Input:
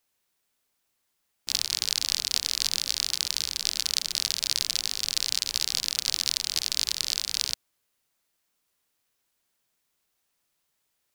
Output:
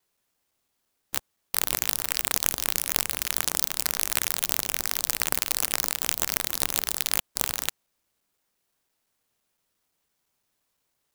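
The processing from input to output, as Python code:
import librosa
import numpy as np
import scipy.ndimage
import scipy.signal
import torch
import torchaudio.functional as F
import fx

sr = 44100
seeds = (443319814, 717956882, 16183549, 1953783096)

y = fx.block_reorder(x, sr, ms=171.0, group=3)
y = fx.clock_jitter(y, sr, seeds[0], jitter_ms=0.13)
y = y * librosa.db_to_amplitude(1.5)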